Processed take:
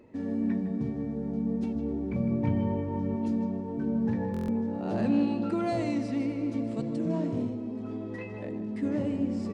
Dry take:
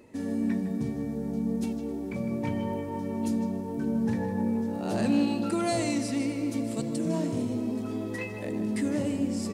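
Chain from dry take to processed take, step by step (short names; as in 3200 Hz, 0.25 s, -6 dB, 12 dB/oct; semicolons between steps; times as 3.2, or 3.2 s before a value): 1.75–3.16 low shelf 170 Hz +9.5 dB; 7.47–8.83 compressor, threshold -31 dBFS, peak gain reduction 5 dB; tape spacing loss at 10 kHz 24 dB; stuck buffer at 4.32, samples 1024, times 6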